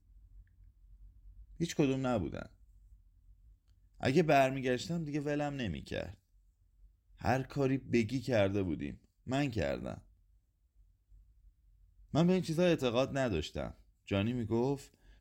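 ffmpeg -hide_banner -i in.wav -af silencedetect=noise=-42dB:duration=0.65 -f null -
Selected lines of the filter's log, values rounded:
silence_start: 0.00
silence_end: 1.60 | silence_duration: 1.60
silence_start: 2.46
silence_end: 4.01 | silence_duration: 1.55
silence_start: 6.11
silence_end: 7.21 | silence_duration: 1.10
silence_start: 9.98
silence_end: 12.14 | silence_duration: 2.16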